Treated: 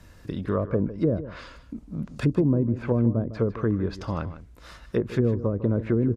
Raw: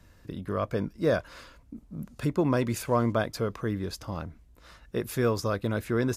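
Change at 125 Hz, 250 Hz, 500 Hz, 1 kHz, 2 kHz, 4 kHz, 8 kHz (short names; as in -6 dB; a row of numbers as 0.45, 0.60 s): +6.0 dB, +5.0 dB, +1.5 dB, -5.0 dB, -5.0 dB, -6.0 dB, under -10 dB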